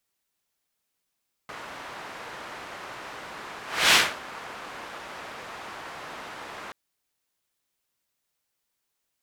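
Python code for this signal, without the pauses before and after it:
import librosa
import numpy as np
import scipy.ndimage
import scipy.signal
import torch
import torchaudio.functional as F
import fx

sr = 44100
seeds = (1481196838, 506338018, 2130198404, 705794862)

y = fx.whoosh(sr, seeds[0], length_s=5.23, peak_s=2.44, rise_s=0.3, fall_s=0.27, ends_hz=1200.0, peak_hz=2800.0, q=0.89, swell_db=23)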